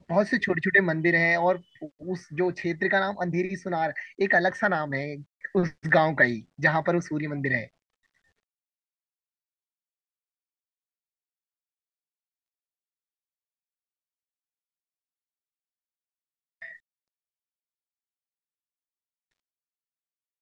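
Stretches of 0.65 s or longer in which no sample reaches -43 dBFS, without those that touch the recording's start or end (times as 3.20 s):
7.67–16.62 s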